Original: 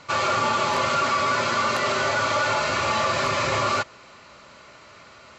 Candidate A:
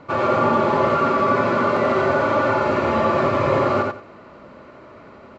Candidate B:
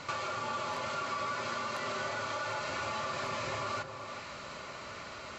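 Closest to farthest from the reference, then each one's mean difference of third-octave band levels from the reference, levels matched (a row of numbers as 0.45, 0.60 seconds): B, A; 5.0, 6.5 decibels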